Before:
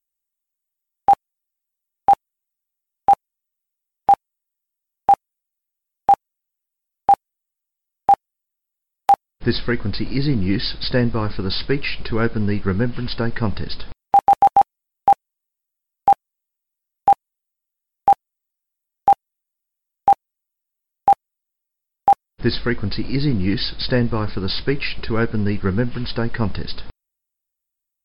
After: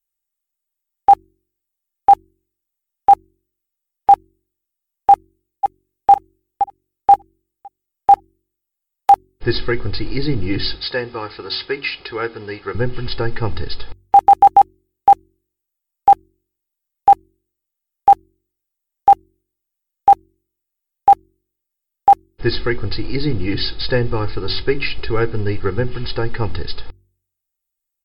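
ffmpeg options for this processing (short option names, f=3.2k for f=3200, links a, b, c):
-filter_complex "[0:a]asplit=2[a][b];[b]afade=t=in:st=5.11:d=0.01,afade=t=out:st=6.11:d=0.01,aecho=0:1:520|1040|1560|2080:0.473151|0.141945|0.0425836|0.0127751[c];[a][c]amix=inputs=2:normalize=0,asettb=1/sr,asplit=3[d][e][f];[d]atrim=end=10.754[g];[e]atrim=start=10.75:end=12.75,asetpts=PTS-STARTPTS,afade=t=in:d=0.004:c=qsin,afade=t=out:st=1.996:d=0.004:c=qsin,highpass=f=650:p=1[h];[f]atrim=start=12.746[i];[g][h]acrossfade=d=0.004:c1=hsin:c2=qsin[j];[j][i]acrossfade=d=0.004:c1=qsin:c2=hsin,aecho=1:1:2.4:0.68,bandreject=f=46.89:t=h:w=4,bandreject=f=93.78:t=h:w=4,bandreject=f=140.67:t=h:w=4,bandreject=f=187.56:t=h:w=4,bandreject=f=234.45:t=h:w=4,bandreject=f=281.34:t=h:w=4,bandreject=f=328.23:t=h:w=4,bandreject=f=375.12:t=h:w=4"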